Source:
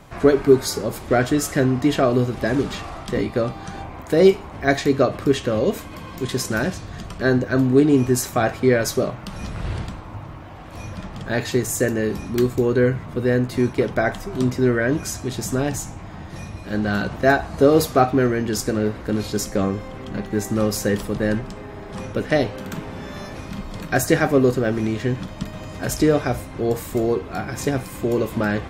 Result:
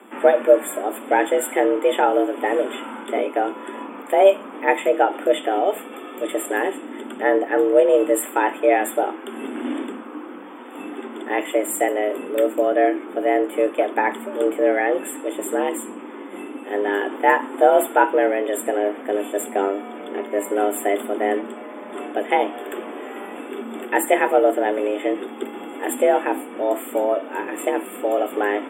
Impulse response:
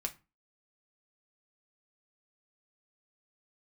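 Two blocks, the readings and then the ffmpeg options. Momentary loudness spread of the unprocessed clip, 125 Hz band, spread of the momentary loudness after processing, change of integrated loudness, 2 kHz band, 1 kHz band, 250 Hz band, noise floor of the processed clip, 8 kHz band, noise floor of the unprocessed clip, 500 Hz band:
17 LU, under -30 dB, 16 LU, 0.0 dB, +0.5 dB, +6.0 dB, -4.5 dB, -37 dBFS, -3.0 dB, -37 dBFS, +2.0 dB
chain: -af "afftfilt=real='re*(1-between(b*sr/4096,3400,7000))':imag='im*(1-between(b*sr/4096,3400,7000))':win_size=4096:overlap=0.75,afreqshift=200"

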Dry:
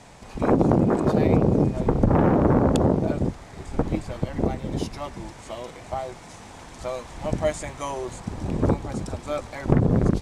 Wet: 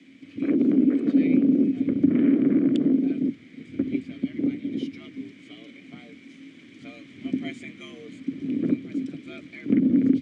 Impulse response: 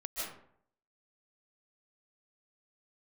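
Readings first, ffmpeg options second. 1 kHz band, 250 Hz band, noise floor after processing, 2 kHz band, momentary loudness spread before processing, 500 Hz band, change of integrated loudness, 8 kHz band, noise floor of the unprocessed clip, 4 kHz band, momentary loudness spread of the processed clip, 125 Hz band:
under -20 dB, +3.0 dB, -49 dBFS, -4.5 dB, 17 LU, -9.5 dB, 0.0 dB, under -15 dB, -44 dBFS, -4.5 dB, 20 LU, -13.5 dB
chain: -filter_complex "[0:a]afreqshift=70,asplit=3[a][b][c];[a]bandpass=f=270:t=q:w=8,volume=0dB[d];[b]bandpass=f=2.29k:t=q:w=8,volume=-6dB[e];[c]bandpass=f=3.01k:t=q:w=8,volume=-9dB[f];[d][e][f]amix=inputs=3:normalize=0,volume=8dB"

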